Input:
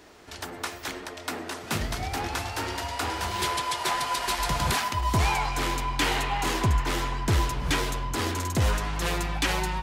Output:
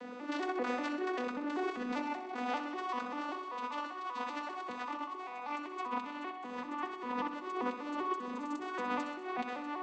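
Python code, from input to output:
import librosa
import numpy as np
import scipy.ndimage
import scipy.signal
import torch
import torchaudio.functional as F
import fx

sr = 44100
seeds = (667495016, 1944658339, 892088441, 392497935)

y = fx.vocoder_arp(x, sr, chord='minor triad', root=59, every_ms=195)
y = fx.bass_treble(y, sr, bass_db=-5, treble_db=-10)
y = fx.over_compress(y, sr, threshold_db=-41.0, ratio=-1.0)
y = fx.echo_feedback(y, sr, ms=64, feedback_pct=60, wet_db=-9.5)
y = F.gain(torch.from_numpy(y), 1.0).numpy()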